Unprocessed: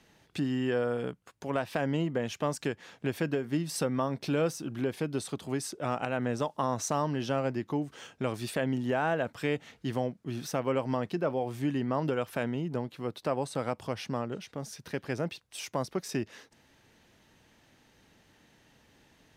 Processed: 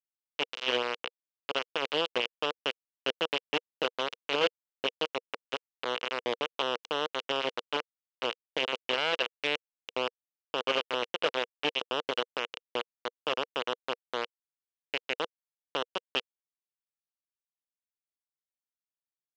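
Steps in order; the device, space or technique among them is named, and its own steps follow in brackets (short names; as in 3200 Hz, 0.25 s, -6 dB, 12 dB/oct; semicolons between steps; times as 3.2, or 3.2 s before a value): hand-held game console (bit-crush 4-bit; speaker cabinet 410–4700 Hz, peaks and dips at 480 Hz +7 dB, 760 Hz -5 dB, 1800 Hz -4 dB, 2900 Hz +10 dB, 4500 Hz -4 dB)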